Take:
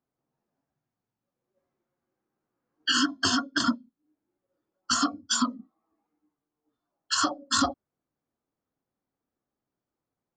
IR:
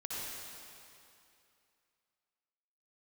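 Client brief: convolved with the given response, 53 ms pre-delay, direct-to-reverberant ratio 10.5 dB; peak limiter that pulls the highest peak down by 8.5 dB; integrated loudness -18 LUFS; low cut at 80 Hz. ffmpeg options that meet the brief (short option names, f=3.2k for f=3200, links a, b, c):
-filter_complex "[0:a]highpass=80,alimiter=limit=-20.5dB:level=0:latency=1,asplit=2[a][b];[1:a]atrim=start_sample=2205,adelay=53[c];[b][c]afir=irnorm=-1:irlink=0,volume=-12.5dB[d];[a][d]amix=inputs=2:normalize=0,volume=14dB"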